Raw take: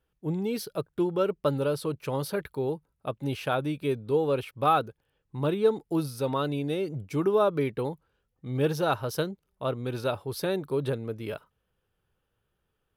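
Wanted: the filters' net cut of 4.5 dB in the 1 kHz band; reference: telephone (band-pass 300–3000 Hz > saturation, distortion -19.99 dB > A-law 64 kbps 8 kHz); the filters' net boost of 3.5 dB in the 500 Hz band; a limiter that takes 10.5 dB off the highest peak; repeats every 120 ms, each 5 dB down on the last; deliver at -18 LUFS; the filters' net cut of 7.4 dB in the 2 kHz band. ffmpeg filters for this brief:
-af "equalizer=f=500:t=o:g=7,equalizer=f=1000:t=o:g=-7,equalizer=f=2000:t=o:g=-7.5,alimiter=limit=0.119:level=0:latency=1,highpass=300,lowpass=3000,aecho=1:1:120|240|360|480|600|720|840:0.562|0.315|0.176|0.0988|0.0553|0.031|0.0173,asoftclip=threshold=0.106,volume=4.22" -ar 8000 -c:a pcm_alaw

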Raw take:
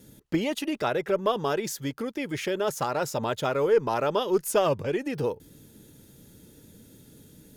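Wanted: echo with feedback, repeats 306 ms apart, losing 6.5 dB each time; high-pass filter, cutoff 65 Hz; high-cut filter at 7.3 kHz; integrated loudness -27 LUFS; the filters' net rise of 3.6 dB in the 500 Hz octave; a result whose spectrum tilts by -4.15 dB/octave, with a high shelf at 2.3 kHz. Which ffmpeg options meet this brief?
-af "highpass=65,lowpass=7300,equalizer=f=500:t=o:g=4,highshelf=f=2300:g=7.5,aecho=1:1:306|612|918|1224|1530|1836:0.473|0.222|0.105|0.0491|0.0231|0.0109,volume=0.668"

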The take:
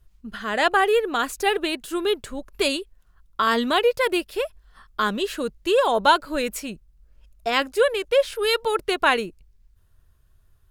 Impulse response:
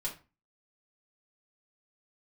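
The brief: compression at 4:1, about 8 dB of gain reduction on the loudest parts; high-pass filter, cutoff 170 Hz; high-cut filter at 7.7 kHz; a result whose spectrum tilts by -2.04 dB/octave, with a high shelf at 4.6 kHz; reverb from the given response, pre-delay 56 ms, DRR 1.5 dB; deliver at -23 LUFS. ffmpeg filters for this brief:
-filter_complex "[0:a]highpass=170,lowpass=7700,highshelf=f=4600:g=7,acompressor=threshold=0.0794:ratio=4,asplit=2[s0][s1];[1:a]atrim=start_sample=2205,adelay=56[s2];[s1][s2]afir=irnorm=-1:irlink=0,volume=0.708[s3];[s0][s3]amix=inputs=2:normalize=0,volume=1.19"

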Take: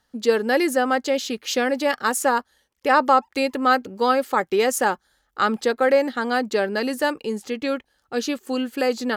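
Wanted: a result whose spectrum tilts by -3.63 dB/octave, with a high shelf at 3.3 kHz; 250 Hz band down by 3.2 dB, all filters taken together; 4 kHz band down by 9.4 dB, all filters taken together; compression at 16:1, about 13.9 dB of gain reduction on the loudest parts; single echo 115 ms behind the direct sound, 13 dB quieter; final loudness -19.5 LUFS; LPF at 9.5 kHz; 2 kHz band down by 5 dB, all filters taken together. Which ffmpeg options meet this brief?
-af "lowpass=9500,equalizer=f=250:t=o:g=-3.5,equalizer=f=2000:t=o:g=-4,highshelf=f=3300:g=-4.5,equalizer=f=4000:t=o:g=-7.5,acompressor=threshold=0.0447:ratio=16,aecho=1:1:115:0.224,volume=4.47"

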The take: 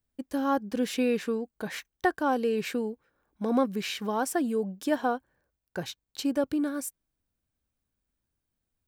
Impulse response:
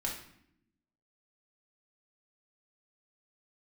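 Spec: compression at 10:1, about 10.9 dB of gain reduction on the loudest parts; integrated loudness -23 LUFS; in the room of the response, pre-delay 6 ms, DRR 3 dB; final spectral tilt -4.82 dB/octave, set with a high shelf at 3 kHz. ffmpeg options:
-filter_complex "[0:a]highshelf=f=3000:g=-6,acompressor=threshold=0.0282:ratio=10,asplit=2[s0][s1];[1:a]atrim=start_sample=2205,adelay=6[s2];[s1][s2]afir=irnorm=-1:irlink=0,volume=0.501[s3];[s0][s3]amix=inputs=2:normalize=0,volume=4.22"

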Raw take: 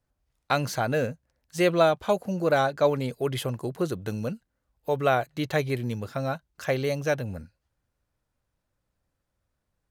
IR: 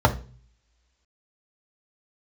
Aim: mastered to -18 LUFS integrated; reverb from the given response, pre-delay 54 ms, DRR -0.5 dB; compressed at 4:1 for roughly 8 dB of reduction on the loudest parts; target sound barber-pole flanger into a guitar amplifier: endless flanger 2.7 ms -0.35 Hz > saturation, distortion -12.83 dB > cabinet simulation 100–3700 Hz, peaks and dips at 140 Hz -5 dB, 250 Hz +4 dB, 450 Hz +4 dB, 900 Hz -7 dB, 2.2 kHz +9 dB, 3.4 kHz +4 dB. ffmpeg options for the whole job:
-filter_complex "[0:a]acompressor=threshold=0.0501:ratio=4,asplit=2[s0][s1];[1:a]atrim=start_sample=2205,adelay=54[s2];[s1][s2]afir=irnorm=-1:irlink=0,volume=0.112[s3];[s0][s3]amix=inputs=2:normalize=0,asplit=2[s4][s5];[s5]adelay=2.7,afreqshift=-0.35[s6];[s4][s6]amix=inputs=2:normalize=1,asoftclip=threshold=0.0944,highpass=100,equalizer=f=140:t=q:w=4:g=-5,equalizer=f=250:t=q:w=4:g=4,equalizer=f=450:t=q:w=4:g=4,equalizer=f=900:t=q:w=4:g=-7,equalizer=f=2200:t=q:w=4:g=9,equalizer=f=3400:t=q:w=4:g=4,lowpass=f=3700:w=0.5412,lowpass=f=3700:w=1.3066,volume=4.22"

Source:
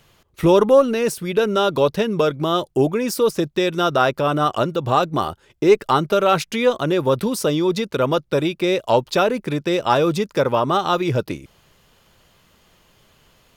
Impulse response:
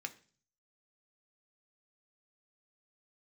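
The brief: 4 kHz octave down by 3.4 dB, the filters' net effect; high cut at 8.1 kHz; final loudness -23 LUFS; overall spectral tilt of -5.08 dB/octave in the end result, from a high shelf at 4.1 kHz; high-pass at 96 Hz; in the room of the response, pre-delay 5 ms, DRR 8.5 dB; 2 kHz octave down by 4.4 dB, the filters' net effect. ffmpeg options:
-filter_complex "[0:a]highpass=96,lowpass=8100,equalizer=f=2000:t=o:g=-6.5,equalizer=f=4000:t=o:g=-4.5,highshelf=f=4100:g=5,asplit=2[s0][s1];[1:a]atrim=start_sample=2205,adelay=5[s2];[s1][s2]afir=irnorm=-1:irlink=0,volume=0.422[s3];[s0][s3]amix=inputs=2:normalize=0,volume=0.668"

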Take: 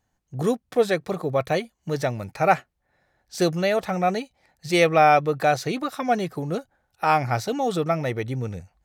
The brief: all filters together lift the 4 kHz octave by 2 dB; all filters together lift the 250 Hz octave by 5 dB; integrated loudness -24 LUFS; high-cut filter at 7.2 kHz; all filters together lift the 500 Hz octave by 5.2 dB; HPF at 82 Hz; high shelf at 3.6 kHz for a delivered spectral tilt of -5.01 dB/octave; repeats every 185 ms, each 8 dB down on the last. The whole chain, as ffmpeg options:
-af "highpass=82,lowpass=7200,equalizer=f=250:t=o:g=5.5,equalizer=f=500:t=o:g=5,highshelf=f=3600:g=-8.5,equalizer=f=4000:t=o:g=8,aecho=1:1:185|370|555|740|925:0.398|0.159|0.0637|0.0255|0.0102,volume=0.596"

